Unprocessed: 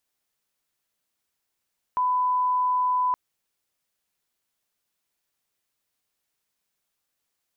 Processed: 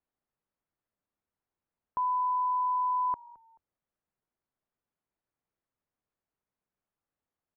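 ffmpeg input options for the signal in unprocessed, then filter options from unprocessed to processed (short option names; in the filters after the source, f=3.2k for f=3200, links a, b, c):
-f lavfi -i "sine=f=1000:d=1.17:r=44100,volume=-1.94dB"
-filter_complex "[0:a]lowpass=1.1k,equalizer=f=650:w=0.5:g=-3.5,asplit=3[a][b][c];[b]adelay=216,afreqshift=-47,volume=-23dB[d];[c]adelay=432,afreqshift=-94,volume=-32.9dB[e];[a][d][e]amix=inputs=3:normalize=0"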